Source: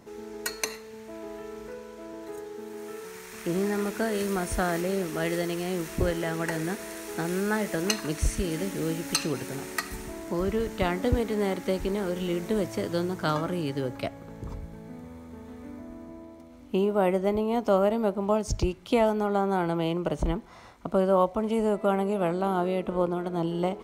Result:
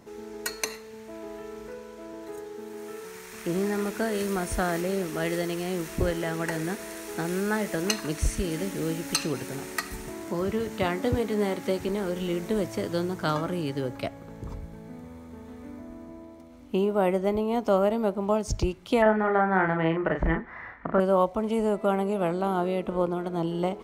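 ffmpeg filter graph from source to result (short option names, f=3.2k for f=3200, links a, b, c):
-filter_complex "[0:a]asettb=1/sr,asplit=3[a][b][c];[a]atrim=end=10.084[d];[b]atrim=start=10.08:end=11.89,asetpts=PTS-STARTPTS,afade=t=in:d=0.004:c=qsin,afade=t=out:st=1.806:d=0.004:c=qsin,highpass=f=75:w=0.5412,highpass=f=75:w=1.3066,acompressor=mode=upward:threshold=-33dB:ratio=2.5:attack=3.2:release=140:knee=2.83:detection=peak,asplit=2[e][f];[f]adelay=19,volume=-11dB[g];[e][g]amix=inputs=2:normalize=0,atrim=end_sample=79821[h];[c]atrim=start=11.886[i];[d][h]acrossfade=d=0.004:c1=hsin:c2=qsin[j];[j][i]acrossfade=d=0.004:c1=qsin:c2=hsin,asettb=1/sr,asplit=3[k][l][m];[k]atrim=end=19.024[n];[l]atrim=start=19.02:end=21,asetpts=PTS-STARTPTS,afade=t=in:d=0.004:c=qsin,afade=t=out:st=1.976:d=0.004:c=qsin,lowpass=f=1.8k:t=q:w=9.9,asplit=2[o][p];[p]adelay=37,volume=-5.5dB[q];[o][q]amix=inputs=2:normalize=0,atrim=end_sample=87318[r];[m]atrim=start=20.996[s];[n][r]acrossfade=d=0.004:c1=hsin:c2=qsin[t];[t][s]acrossfade=d=0.004:c1=qsin:c2=hsin"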